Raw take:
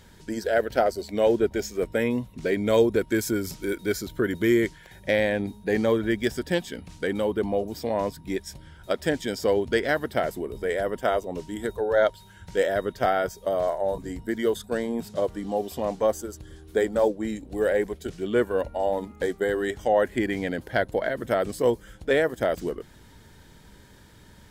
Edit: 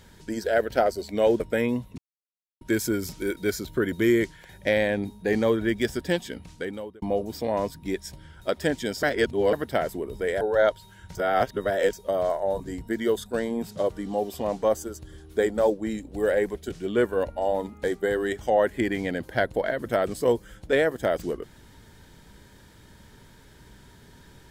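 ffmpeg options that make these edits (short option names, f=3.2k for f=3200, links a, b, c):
-filter_complex "[0:a]asplit=10[a][b][c][d][e][f][g][h][i][j];[a]atrim=end=1.402[k];[b]atrim=start=1.818:end=2.4,asetpts=PTS-STARTPTS,afade=t=out:st=0.578:d=0.004:c=hsin[l];[c]atrim=start=2.4:end=3.03,asetpts=PTS-STARTPTS,volume=0[m];[d]atrim=start=3.03:end=7.44,asetpts=PTS-STARTPTS,afade=t=in:d=0.004:c=hsin,afade=t=out:st=3.75:d=0.66[n];[e]atrim=start=7.44:end=9.452,asetpts=PTS-STARTPTS,afade=t=in:d=0.004:c=hsin[o];[f]atrim=start=9.448:end=9.952,asetpts=PTS-STARTPTS,areverse[p];[g]atrim=start=9.948:end=10.832[q];[h]atrim=start=11.788:end=12.532[r];[i]atrim=start=12.528:end=13.312,asetpts=PTS-STARTPTS,areverse[s];[j]atrim=start=13.308[t];[l][m][n][o]concat=n=4:v=0:a=1[u];[k][u]acrossfade=d=0.004:c1=hsin:c2=hsin[v];[v][p]acrossfade=d=0.004:c1=hsin:c2=hsin[w];[w][q]acrossfade=d=0.004:c1=hsin:c2=hsin[x];[x][r]acrossfade=d=0.004:c1=hsin:c2=hsin[y];[y][s]acrossfade=d=0.004:c1=hsin:c2=hsin[z];[z][t]acrossfade=d=0.004:c1=hsin:c2=hsin"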